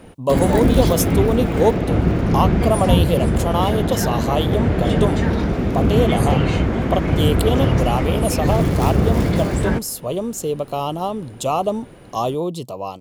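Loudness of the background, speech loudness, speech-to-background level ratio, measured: −19.0 LKFS, −22.5 LKFS, −3.5 dB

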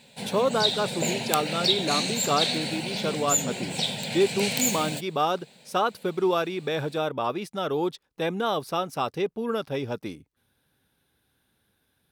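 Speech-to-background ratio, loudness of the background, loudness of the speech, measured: −1.5 dB, −26.5 LKFS, −28.0 LKFS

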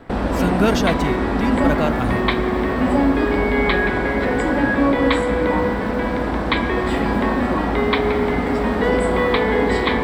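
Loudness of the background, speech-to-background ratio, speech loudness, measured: −19.0 LKFS, −4.5 dB, −23.5 LKFS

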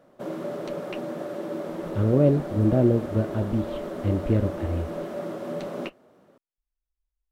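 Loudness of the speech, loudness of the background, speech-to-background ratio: −24.5 LKFS, −33.5 LKFS, 9.0 dB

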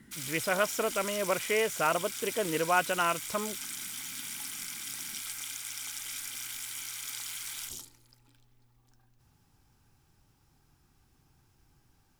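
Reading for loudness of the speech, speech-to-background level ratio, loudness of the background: −30.5 LKFS, 6.5 dB, −37.0 LKFS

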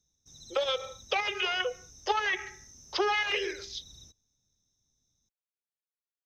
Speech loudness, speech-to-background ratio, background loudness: −30.5 LKFS, 19.5 dB, −50.0 LKFS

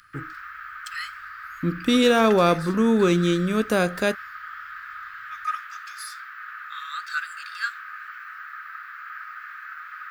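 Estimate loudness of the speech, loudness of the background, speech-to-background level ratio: −21.0 LKFS, −35.0 LKFS, 14.0 dB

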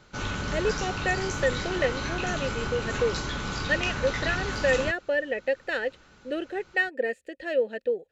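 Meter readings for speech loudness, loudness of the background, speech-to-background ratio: −29.0 LKFS, −31.5 LKFS, 2.5 dB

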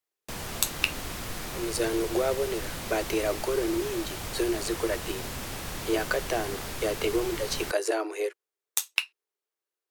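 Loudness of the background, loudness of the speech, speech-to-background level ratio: −35.5 LKFS, −30.0 LKFS, 5.5 dB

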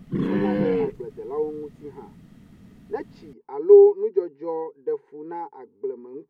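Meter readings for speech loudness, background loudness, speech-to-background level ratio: −21.5 LKFS, −24.5 LKFS, 3.0 dB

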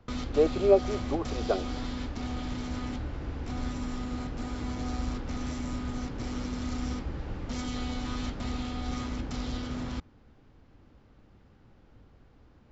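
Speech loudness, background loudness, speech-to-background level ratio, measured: −28.0 LKFS, −35.5 LKFS, 7.5 dB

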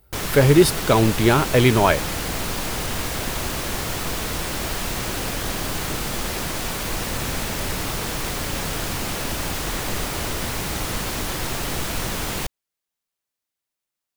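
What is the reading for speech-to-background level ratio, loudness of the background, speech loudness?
8.5 dB, −26.0 LKFS, −17.5 LKFS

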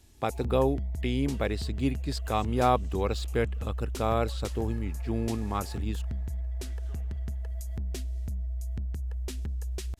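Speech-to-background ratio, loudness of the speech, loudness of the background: 5.0 dB, −31.0 LKFS, −36.0 LKFS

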